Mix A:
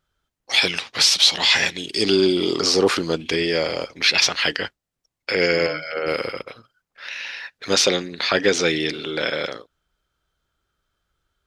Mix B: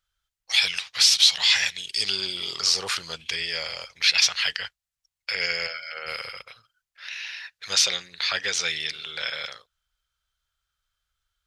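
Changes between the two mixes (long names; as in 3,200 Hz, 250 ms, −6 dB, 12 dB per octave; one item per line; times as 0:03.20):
second voice −12.0 dB
master: add guitar amp tone stack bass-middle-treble 10-0-10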